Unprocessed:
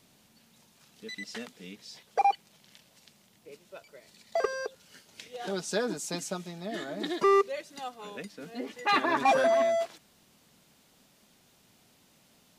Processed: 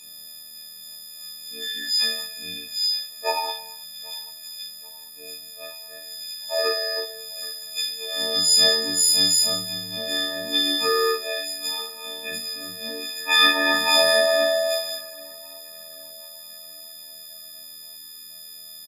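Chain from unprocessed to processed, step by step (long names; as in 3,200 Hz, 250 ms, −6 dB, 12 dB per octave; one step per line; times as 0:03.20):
every partial snapped to a pitch grid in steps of 6 semitones
high shelf with overshoot 2,000 Hz +8.5 dB, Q 1.5
time stretch by overlap-add 1.5×, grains 25 ms
double-tracking delay 38 ms −3 dB
on a send: tape delay 787 ms, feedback 54%, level −24 dB, low-pass 3,600 Hz
on the sum: reverb whose tail is shaped and stops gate 330 ms falling, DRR 9.5 dB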